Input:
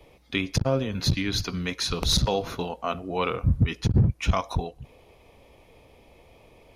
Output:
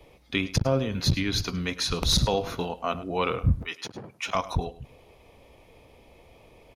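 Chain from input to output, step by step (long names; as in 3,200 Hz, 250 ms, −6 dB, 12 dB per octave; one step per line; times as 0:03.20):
0:03.58–0:04.35: high-pass filter 590 Hz 12 dB per octave
on a send: single-tap delay 104 ms −17.5 dB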